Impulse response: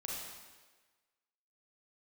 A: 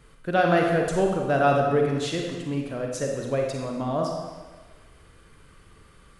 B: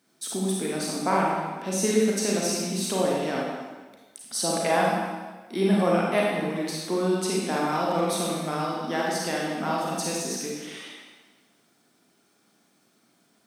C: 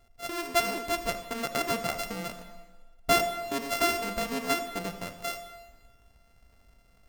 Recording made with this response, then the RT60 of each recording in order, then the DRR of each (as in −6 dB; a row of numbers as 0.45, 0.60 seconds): B; 1.4, 1.4, 1.3 seconds; 0.5, −4.0, 8.5 decibels